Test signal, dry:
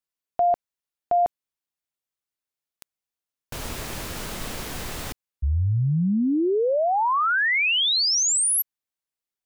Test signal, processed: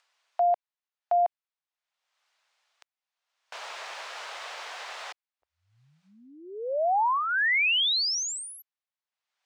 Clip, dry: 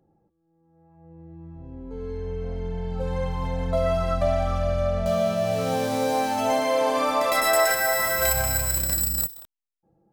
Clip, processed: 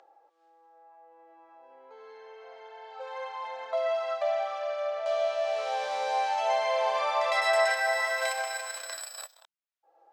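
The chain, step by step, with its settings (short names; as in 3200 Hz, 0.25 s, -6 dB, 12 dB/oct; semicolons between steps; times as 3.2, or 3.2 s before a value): inverse Chebyshev high-pass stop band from 190 Hz, stop band 60 dB; dynamic EQ 1300 Hz, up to -7 dB, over -41 dBFS, Q 3.2; upward compressor, threshold -46 dBFS; air absorption 130 m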